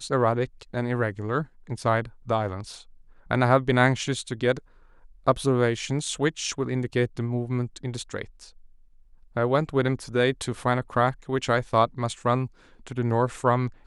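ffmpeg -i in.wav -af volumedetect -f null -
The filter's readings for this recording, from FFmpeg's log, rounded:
mean_volume: -26.0 dB
max_volume: -6.0 dB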